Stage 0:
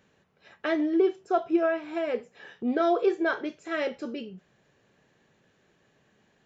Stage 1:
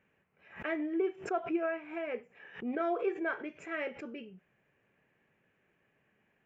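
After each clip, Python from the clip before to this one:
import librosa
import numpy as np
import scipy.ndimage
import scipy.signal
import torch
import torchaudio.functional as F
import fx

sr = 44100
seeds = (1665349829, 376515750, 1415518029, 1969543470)

y = fx.high_shelf_res(x, sr, hz=3200.0, db=-9.5, q=3.0)
y = fx.pre_swell(y, sr, db_per_s=140.0)
y = y * librosa.db_to_amplitude(-9.0)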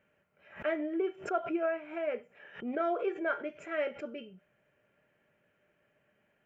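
y = fx.small_body(x, sr, hz=(600.0, 1400.0, 3100.0), ring_ms=70, db=13)
y = y * librosa.db_to_amplitude(-1.0)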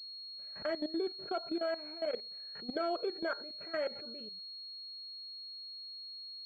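y = fx.level_steps(x, sr, step_db=17)
y = fx.pwm(y, sr, carrier_hz=4300.0)
y = y * librosa.db_to_amplitude(1.0)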